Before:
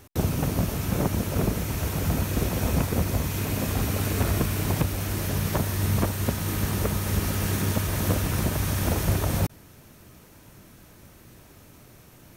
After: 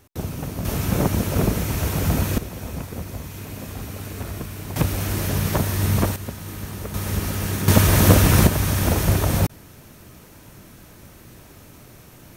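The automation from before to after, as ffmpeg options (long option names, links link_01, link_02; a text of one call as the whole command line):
ffmpeg -i in.wav -af "asetnsamples=nb_out_samples=441:pad=0,asendcmd='0.65 volume volume 4.5dB;2.38 volume volume -7dB;4.76 volume volume 4dB;6.16 volume volume -6dB;6.94 volume volume 1dB;7.68 volume volume 11dB;8.47 volume volume 5dB',volume=-4dB" out.wav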